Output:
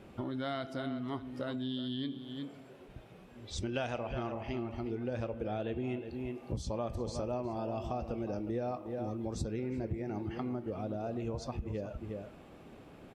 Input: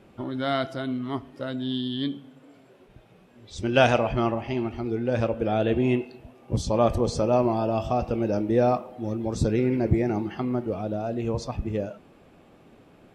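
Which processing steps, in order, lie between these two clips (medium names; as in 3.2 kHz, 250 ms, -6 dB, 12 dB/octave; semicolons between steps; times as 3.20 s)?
peaking EQ 61 Hz +5 dB; echo from a far wall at 62 m, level -12 dB; compression 5:1, threshold -35 dBFS, peak gain reduction 19 dB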